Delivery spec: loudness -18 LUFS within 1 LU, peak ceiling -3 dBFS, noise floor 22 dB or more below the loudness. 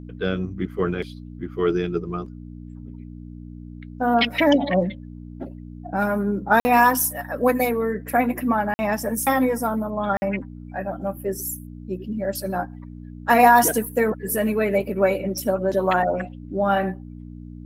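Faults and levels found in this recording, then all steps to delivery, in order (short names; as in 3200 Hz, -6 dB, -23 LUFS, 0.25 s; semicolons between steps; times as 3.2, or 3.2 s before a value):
dropouts 3; longest dropout 50 ms; hum 60 Hz; harmonics up to 300 Hz; hum level -36 dBFS; loudness -22.0 LUFS; peak -3.5 dBFS; loudness target -18.0 LUFS
-> interpolate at 6.6/8.74/10.17, 50 ms; de-hum 60 Hz, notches 5; gain +4 dB; limiter -3 dBFS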